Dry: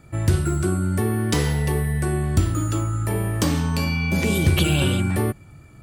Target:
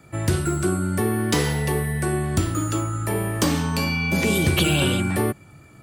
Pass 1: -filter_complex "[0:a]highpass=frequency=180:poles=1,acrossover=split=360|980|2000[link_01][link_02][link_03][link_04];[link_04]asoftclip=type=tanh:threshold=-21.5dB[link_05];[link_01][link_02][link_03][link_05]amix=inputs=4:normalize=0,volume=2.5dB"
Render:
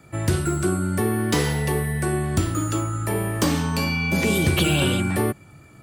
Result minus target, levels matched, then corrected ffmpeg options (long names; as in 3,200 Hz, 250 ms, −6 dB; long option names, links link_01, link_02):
soft clipping: distortion +9 dB
-filter_complex "[0:a]highpass=frequency=180:poles=1,acrossover=split=360|980|2000[link_01][link_02][link_03][link_04];[link_04]asoftclip=type=tanh:threshold=-14.5dB[link_05];[link_01][link_02][link_03][link_05]amix=inputs=4:normalize=0,volume=2.5dB"